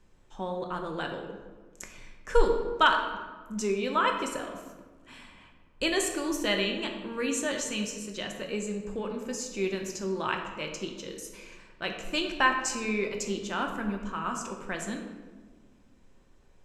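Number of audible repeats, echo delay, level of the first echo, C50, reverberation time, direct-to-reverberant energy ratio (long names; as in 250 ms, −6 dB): no echo audible, no echo audible, no echo audible, 5.5 dB, 1.4 s, 2.0 dB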